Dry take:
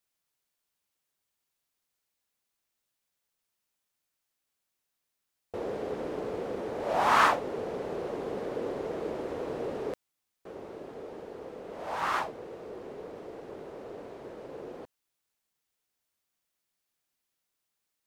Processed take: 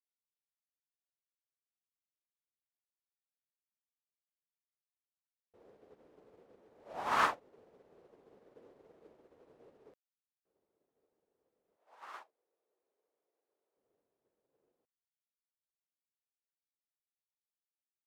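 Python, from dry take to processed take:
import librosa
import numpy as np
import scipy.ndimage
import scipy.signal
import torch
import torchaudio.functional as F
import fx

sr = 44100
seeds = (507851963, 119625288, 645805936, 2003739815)

y = fx.highpass(x, sr, hz=420.0, slope=12, at=(11.76, 13.77))
y = fx.upward_expand(y, sr, threshold_db=-44.0, expansion=2.5)
y = y * 10.0 ** (-5.5 / 20.0)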